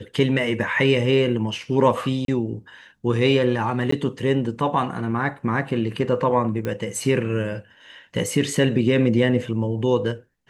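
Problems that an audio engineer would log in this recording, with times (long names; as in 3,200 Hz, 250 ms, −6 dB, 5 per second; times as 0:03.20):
0:02.25–0:02.28: drop-out 32 ms
0:03.91–0:03.92: drop-out 14 ms
0:06.65: click −15 dBFS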